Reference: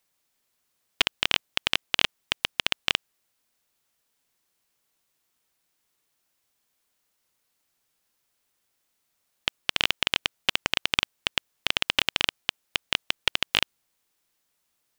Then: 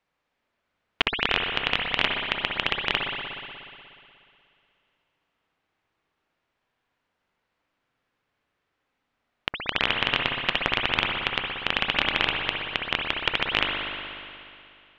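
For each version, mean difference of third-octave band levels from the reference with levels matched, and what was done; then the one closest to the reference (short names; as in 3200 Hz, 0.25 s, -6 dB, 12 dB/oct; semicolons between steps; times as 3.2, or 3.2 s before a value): 9.5 dB: LPF 2400 Hz 12 dB/oct; spring tank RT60 2.5 s, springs 60 ms, chirp 65 ms, DRR 0 dB; gain +3 dB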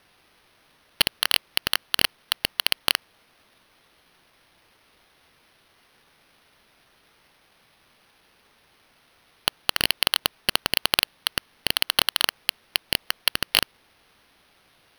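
5.5 dB: in parallel at -9 dB: sine folder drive 18 dB, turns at -1 dBFS; on the sum: sample-and-hold 6×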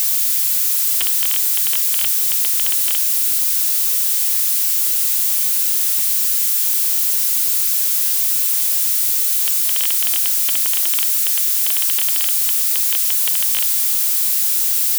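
15.0 dB: switching spikes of -7.5 dBFS; low shelf 210 Hz -10 dB; gain -6 dB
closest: second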